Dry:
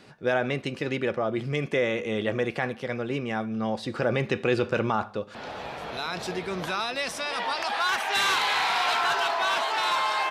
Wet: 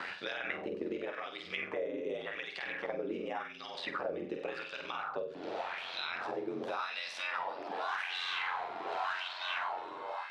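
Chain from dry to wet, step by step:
fade-out on the ending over 0.80 s
ring modulation 45 Hz
brickwall limiter −20.5 dBFS, peak gain reduction 7 dB
on a send: flutter between parallel walls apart 8.2 metres, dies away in 0.49 s
on the sum: auto-filter band-pass sine 0.88 Hz 340–4,100 Hz
multiband upward and downward compressor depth 100%

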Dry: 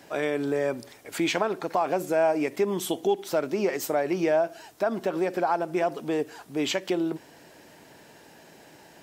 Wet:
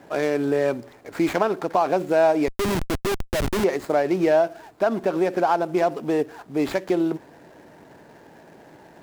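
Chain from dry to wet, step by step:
running median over 15 samples
0:02.48–0:03.64: comparator with hysteresis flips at −31.5 dBFS
level +5 dB

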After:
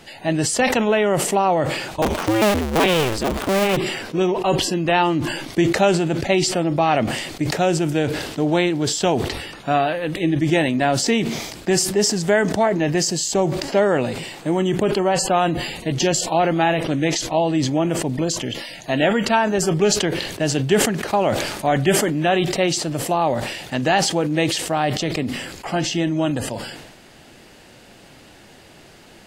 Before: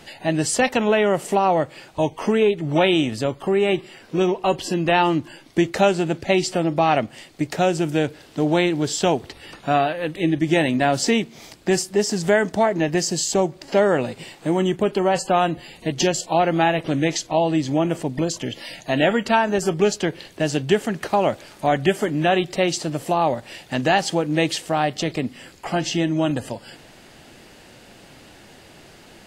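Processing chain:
0:02.02–0:03.77: sub-harmonics by changed cycles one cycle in 2, inverted
level that may fall only so fast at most 48 dB per second

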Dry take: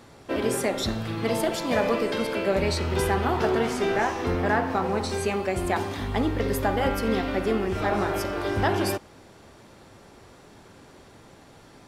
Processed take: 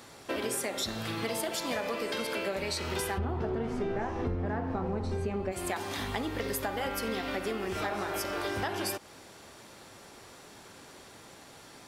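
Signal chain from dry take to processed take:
spectral tilt +2 dB per octave, from 0:03.17 −3 dB per octave, from 0:05.51 +2 dB per octave
downward compressor 6 to 1, threshold −30 dBFS, peak gain reduction 15 dB

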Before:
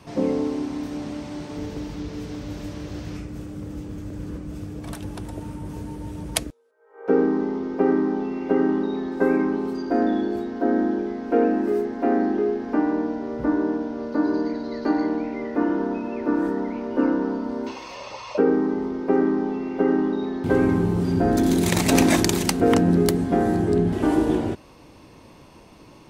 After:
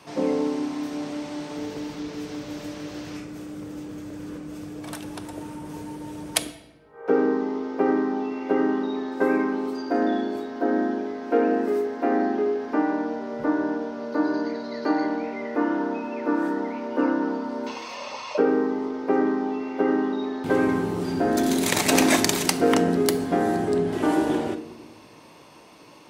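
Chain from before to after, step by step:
high-pass filter 470 Hz 6 dB per octave
in parallel at −7 dB: hard clipping −14 dBFS, distortion −22 dB
on the sum: rectangular room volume 570 cubic metres, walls mixed, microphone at 0.43 metres
level −1 dB

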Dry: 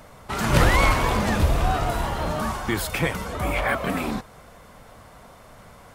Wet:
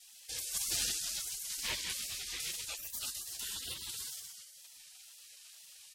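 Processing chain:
sub-octave generator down 2 octaves, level +1 dB
hum with harmonics 60 Hz, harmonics 7, −36 dBFS −5 dB per octave
meter weighting curve A
on a send: echo with shifted repeats 124 ms, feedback 49%, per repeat +47 Hz, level −6 dB
on the sum: tape wow and flutter 87 cents
0:02.44–0:03.14: low-shelf EQ 390 Hz +3 dB
in parallel at +1 dB: downward compressor, threshold −31 dBFS, peak gain reduction 14 dB
on the sum: gate on every frequency bin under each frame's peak −25 dB weak

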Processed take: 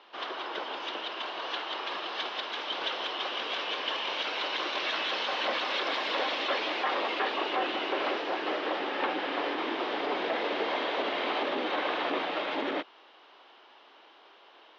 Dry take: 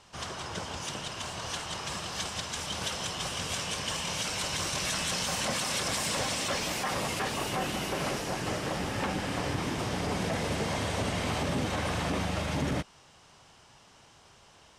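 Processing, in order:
elliptic band-pass filter 320–3,700 Hz, stop band 40 dB
level +3.5 dB

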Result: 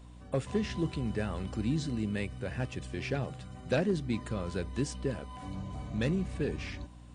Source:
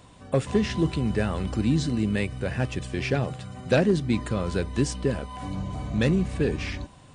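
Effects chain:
mains hum 60 Hz, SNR 17 dB
level −8 dB

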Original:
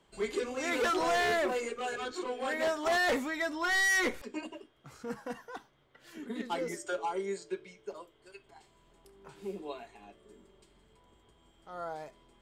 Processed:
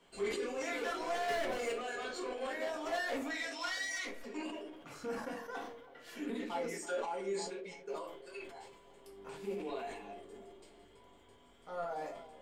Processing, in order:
loose part that buzzes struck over −51 dBFS, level −45 dBFS
low-shelf EQ 110 Hz −11.5 dB
0:01.28–0:01.73: leveller curve on the samples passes 3
0:03.30–0:04.05: meter weighting curve ITU-R 468
downward compressor 6 to 1, threshold −40 dBFS, peak gain reduction 20.5 dB
0:07.60–0:08.00: downward expander −54 dBFS
flanger 1.7 Hz, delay 4.5 ms, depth 7.3 ms, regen +78%
soft clipping −37 dBFS, distortion −24 dB
on a send: feedback echo with a band-pass in the loop 325 ms, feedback 62%, band-pass 510 Hz, level −15 dB
on the sum: rectangular room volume 120 cubic metres, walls furnished, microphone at 1.8 metres
level that may fall only so fast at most 55 dB per second
level +3.5 dB

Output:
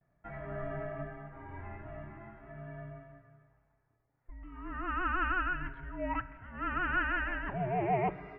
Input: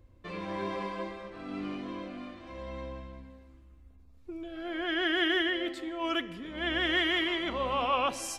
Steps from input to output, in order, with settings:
low-shelf EQ 340 Hz −9 dB
noise gate with hold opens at −59 dBFS
single-sideband voice off tune −380 Hz 300–2,300 Hz

